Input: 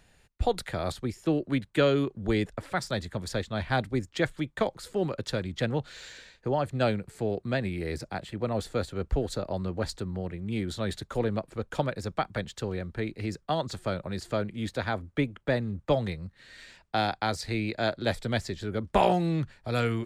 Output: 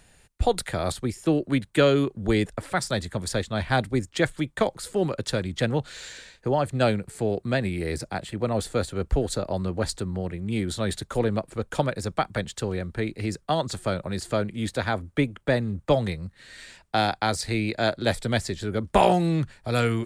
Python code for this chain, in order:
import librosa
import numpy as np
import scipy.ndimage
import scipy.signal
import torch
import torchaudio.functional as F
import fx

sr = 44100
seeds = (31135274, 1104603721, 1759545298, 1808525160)

y = fx.peak_eq(x, sr, hz=9000.0, db=7.5, octaves=0.7)
y = y * librosa.db_to_amplitude(4.0)